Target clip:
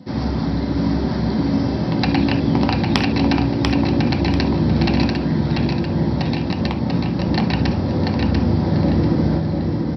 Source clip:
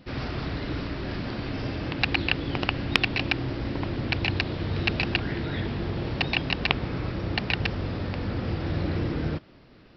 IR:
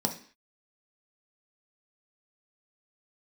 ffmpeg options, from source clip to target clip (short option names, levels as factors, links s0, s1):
-filter_complex "[0:a]equalizer=f=70:t=o:w=0.28:g=15,asettb=1/sr,asplit=3[s0][s1][s2];[s0]atrim=end=5.044[s3];[s1]atrim=start=5.04:end=7.19,asetpts=PTS-STARTPTS,afade=t=in:d=0.004:c=qsin,afade=t=out:st=2.146:d=0.004:c=qsin,acompressor=threshold=0.0562:ratio=6[s4];[s2]atrim=start=7.186[s5];[s3][s4]acrossfade=d=0.004:c1=hsin:c2=qsin[s6];[s6][s5]acrossfade=d=0.004:c1=qsin:c2=hsin,aecho=1:1:691|1382|2073|2764:0.668|0.201|0.0602|0.018[s7];[1:a]atrim=start_sample=2205,atrim=end_sample=3528[s8];[s7][s8]afir=irnorm=-1:irlink=0,volume=0.794"